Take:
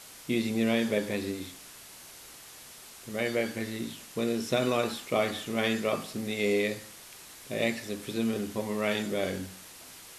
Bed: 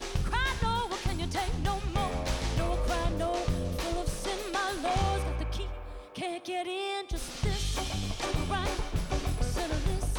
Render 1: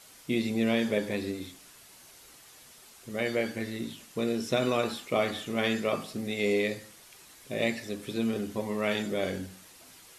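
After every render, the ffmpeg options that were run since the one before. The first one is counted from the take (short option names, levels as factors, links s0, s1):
-af "afftdn=nr=6:nf=-49"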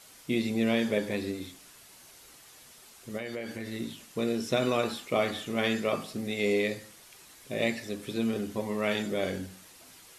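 -filter_complex "[0:a]asettb=1/sr,asplit=3[s0][s1][s2];[s0]atrim=end=3.174[s3];[s1]atrim=start=3.17:end=3.72,asetpts=PTS-STARTPTS,afade=t=in:d=0.004:c=qsin,afade=t=out:st=0.546:d=0.004:c=qsin,acompressor=threshold=0.0224:ratio=4:attack=3.2:release=140:knee=1:detection=peak[s4];[s2]atrim=start=3.716[s5];[s3][s4]acrossfade=d=0.004:c1=hsin:c2=qsin[s6];[s6][s5]acrossfade=d=0.004:c1=qsin:c2=hsin"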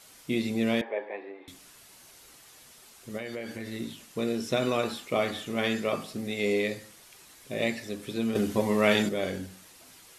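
-filter_complex "[0:a]asettb=1/sr,asplit=3[s0][s1][s2];[s0]atrim=end=0.814[s3];[s1]atrim=start=0.81:end=1.48,asetpts=PTS-STARTPTS,afade=t=in:d=0.004:c=qsin,afade=t=out:st=0.666:d=0.004:c=qsin,highpass=f=430:w=0.5412,highpass=f=430:w=1.3066,equalizer=f=490:t=q:w=4:g=-4,equalizer=f=820:t=q:w=4:g=8,equalizer=f=1400:t=q:w=4:g=-9,lowpass=f=2100:w=0.5412,lowpass=f=2100:w=1.3066[s4];[s2]atrim=start=1.476[s5];[s3][s4]acrossfade=d=0.004:c1=hsin:c2=qsin[s6];[s6][s5]acrossfade=d=0.004:c1=qsin:c2=hsin,asettb=1/sr,asplit=3[s7][s8][s9];[s7]atrim=end=8.354[s10];[s8]atrim=start=8.35:end=9.09,asetpts=PTS-STARTPTS,afade=t=in:d=0.004:c=qsin,afade=t=out:st=0.736:d=0.004:c=qsin,acontrast=70[s11];[s9]atrim=start=9.086[s12];[s10][s11]acrossfade=d=0.004:c1=hsin:c2=qsin[s13];[s13][s12]acrossfade=d=0.004:c1=qsin:c2=hsin"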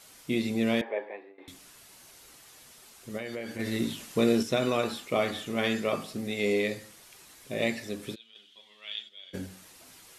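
-filter_complex "[0:a]asettb=1/sr,asplit=3[s0][s1][s2];[s0]atrim=end=3.594[s3];[s1]atrim=start=3.59:end=4.43,asetpts=PTS-STARTPTS,afade=t=in:d=0.004:c=qsin,afade=t=out:st=0.836:d=0.004:c=qsin,acontrast=55[s4];[s2]atrim=start=4.426[s5];[s3][s4]acrossfade=d=0.004:c1=hsin:c2=qsin[s6];[s6][s5]acrossfade=d=0.004:c1=qsin:c2=hsin,asplit=3[s7][s8][s9];[s7]afade=t=out:st=8.14:d=0.02[s10];[s8]bandpass=f=3300:t=q:w=11,afade=t=in:st=8.14:d=0.02,afade=t=out:st=9.33:d=0.02[s11];[s9]afade=t=in:st=9.33:d=0.02[s12];[s10][s11][s12]amix=inputs=3:normalize=0,asplit=2[s13][s14];[s13]atrim=end=1.38,asetpts=PTS-STARTPTS,afade=t=out:st=0.97:d=0.41:silence=0.149624[s15];[s14]atrim=start=1.38,asetpts=PTS-STARTPTS,afade=t=in:d=0.004:c=hsin:silence=0.149624[s16];[s15][s16]concat=n=2:v=0:a=1"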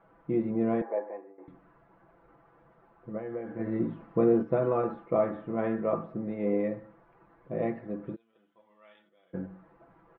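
-af "lowpass=f=1300:w=0.5412,lowpass=f=1300:w=1.3066,aecho=1:1:6:0.65"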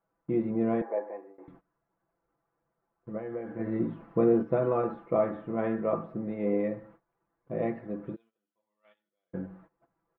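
-af "agate=range=0.1:threshold=0.002:ratio=16:detection=peak"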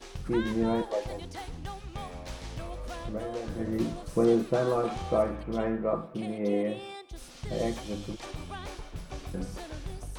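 -filter_complex "[1:a]volume=0.355[s0];[0:a][s0]amix=inputs=2:normalize=0"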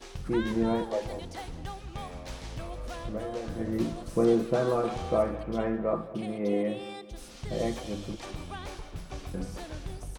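-filter_complex "[0:a]asplit=2[s0][s1];[s1]adelay=209,lowpass=f=2300:p=1,volume=0.15,asplit=2[s2][s3];[s3]adelay=209,lowpass=f=2300:p=1,volume=0.51,asplit=2[s4][s5];[s5]adelay=209,lowpass=f=2300:p=1,volume=0.51,asplit=2[s6][s7];[s7]adelay=209,lowpass=f=2300:p=1,volume=0.51,asplit=2[s8][s9];[s9]adelay=209,lowpass=f=2300:p=1,volume=0.51[s10];[s0][s2][s4][s6][s8][s10]amix=inputs=6:normalize=0"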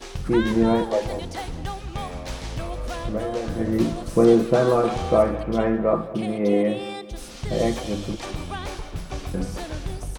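-af "volume=2.51"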